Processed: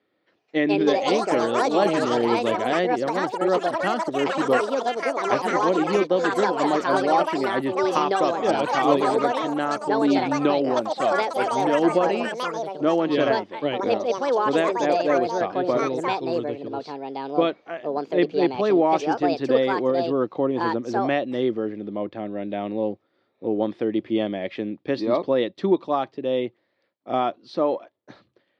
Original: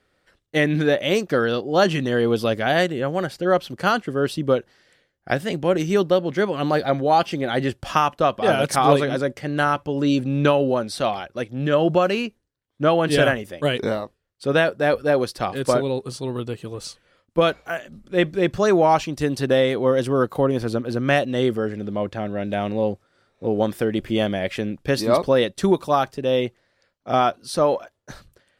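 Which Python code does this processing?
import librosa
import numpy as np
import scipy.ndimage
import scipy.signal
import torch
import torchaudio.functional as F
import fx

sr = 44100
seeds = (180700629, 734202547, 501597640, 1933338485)

y = fx.cabinet(x, sr, low_hz=130.0, low_slope=24, high_hz=3900.0, hz=(150.0, 320.0, 1500.0, 2800.0), db=(-9, 7, -8, -4))
y = fx.echo_pitch(y, sr, ms=281, semitones=5, count=3, db_per_echo=-3.0)
y = y * 10.0 ** (-4.0 / 20.0)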